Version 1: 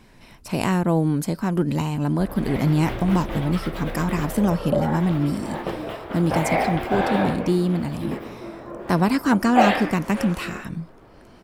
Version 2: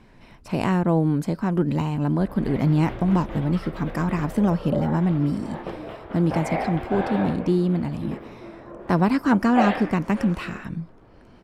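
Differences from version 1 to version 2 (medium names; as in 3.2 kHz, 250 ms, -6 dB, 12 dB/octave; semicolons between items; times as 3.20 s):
background -4.5 dB; master: add low-pass 2.4 kHz 6 dB/octave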